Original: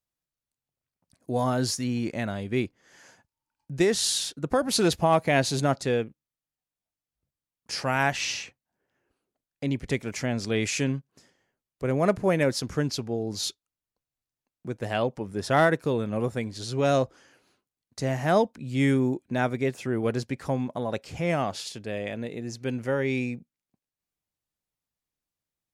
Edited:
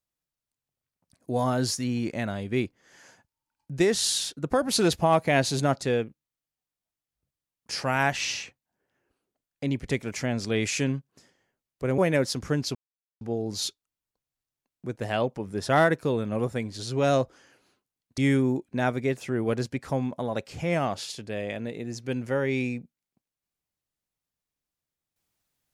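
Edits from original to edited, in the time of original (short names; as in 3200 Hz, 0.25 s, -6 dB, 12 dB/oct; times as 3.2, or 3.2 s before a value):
11.98–12.25 cut
13.02 insert silence 0.46 s
17.99–18.75 cut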